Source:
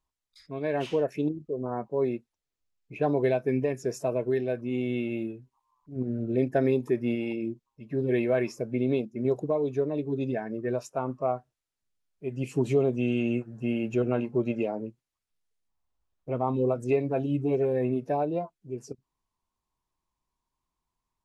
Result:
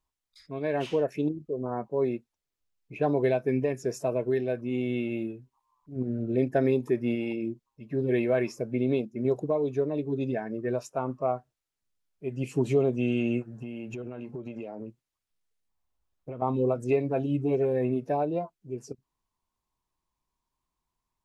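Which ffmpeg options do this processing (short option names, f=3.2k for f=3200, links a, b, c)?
-filter_complex "[0:a]asettb=1/sr,asplit=3[a][b][c];[a]atrim=end=13.574[d];[b]atrim=start=13.57:end=16.42,asetpts=PTS-STARTPTS,afade=t=in:d=0.004:c=qsin,afade=t=out:st=2.846:d=0.004:c=qsin,acompressor=threshold=-33dB:ratio=16:attack=3.2:release=140:knee=1:detection=peak[e];[c]atrim=start=16.416[f];[d][e]acrossfade=d=0.004:c1=hsin:c2=qsin[g];[g][f]acrossfade=d=0.004:c1=qsin:c2=hsin"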